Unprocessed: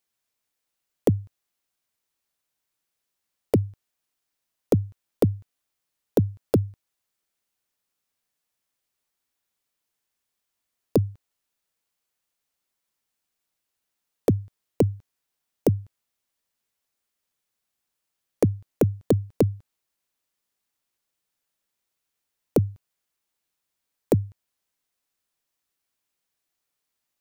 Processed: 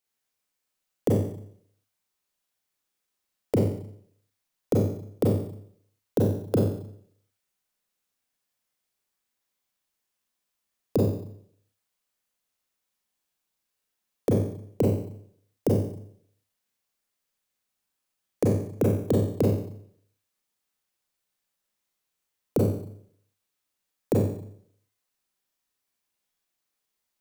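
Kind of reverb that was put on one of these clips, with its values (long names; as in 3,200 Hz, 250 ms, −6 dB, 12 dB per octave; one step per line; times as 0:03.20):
four-comb reverb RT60 0.64 s, combs from 30 ms, DRR −3 dB
level −5 dB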